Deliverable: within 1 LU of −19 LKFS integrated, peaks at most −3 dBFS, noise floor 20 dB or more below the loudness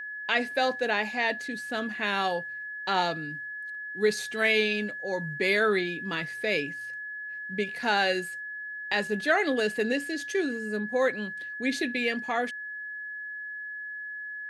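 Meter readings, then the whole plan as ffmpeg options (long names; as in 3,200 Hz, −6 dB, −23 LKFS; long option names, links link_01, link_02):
interfering tone 1,700 Hz; level of the tone −35 dBFS; integrated loudness −28.5 LKFS; sample peak −11.5 dBFS; target loudness −19.0 LKFS
→ -af "bandreject=frequency=1700:width=30"
-af "volume=9.5dB,alimiter=limit=-3dB:level=0:latency=1"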